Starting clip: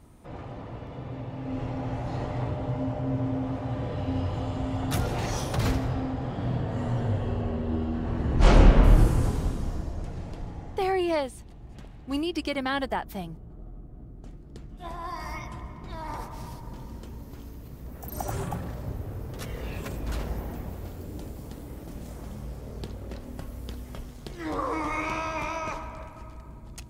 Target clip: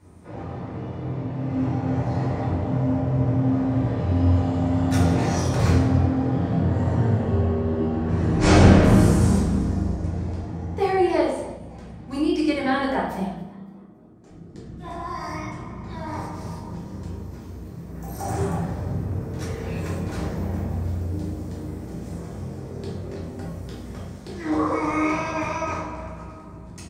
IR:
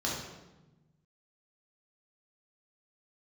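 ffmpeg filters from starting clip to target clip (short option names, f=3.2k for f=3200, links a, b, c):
-filter_complex "[0:a]asettb=1/sr,asplit=3[a][b][c];[a]atrim=end=8.094[d];[b]atrim=start=8.09:end=9.4,asetpts=PTS-STARTPTS,afade=t=in:d=0.004:c=qsin,afade=t=out:st=1.306:d=0.004:c=qsin,highshelf=f=3.5k:g=9.5[e];[c]atrim=start=9.396[f];[d][e]acrossfade=d=0.004:c1=hsin:c2=qsin[g];[g][f]acrossfade=d=0.004:c1=qsin:c2=hsin,asettb=1/sr,asplit=3[h][i][j];[h]atrim=end=13.234[k];[i]atrim=start=13.23:end=14.3,asetpts=PTS-STARTPTS,afade=t=in:d=0.004:c=qsin,afade=t=out:st=1.066:d=0.004:c=qsin,highpass=f=590:p=1[l];[j]atrim=start=14.296[m];[k][l]acrossfade=d=0.004:c1=hsin:c2=qsin[n];[n][m]acrossfade=d=0.004:c1=qsin:c2=hsin,asplit=4[o][p][q][r];[p]adelay=281,afreqshift=76,volume=-23dB[s];[q]adelay=562,afreqshift=152,volume=-30.5dB[t];[r]adelay=843,afreqshift=228,volume=-38.1dB[u];[o][s][t][u]amix=inputs=4:normalize=0[v];[1:a]atrim=start_sample=2205,asetrate=57330,aresample=44100[w];[v][w]afir=irnorm=-1:irlink=0,volume=-1.5dB"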